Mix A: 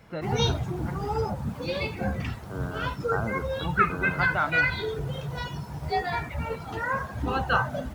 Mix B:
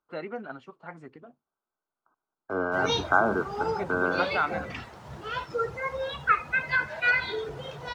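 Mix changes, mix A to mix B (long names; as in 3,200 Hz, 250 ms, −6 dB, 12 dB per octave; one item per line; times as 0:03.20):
second voice +10.5 dB
background: entry +2.50 s
master: add three-way crossover with the lows and the highs turned down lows −13 dB, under 300 Hz, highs −13 dB, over 7,300 Hz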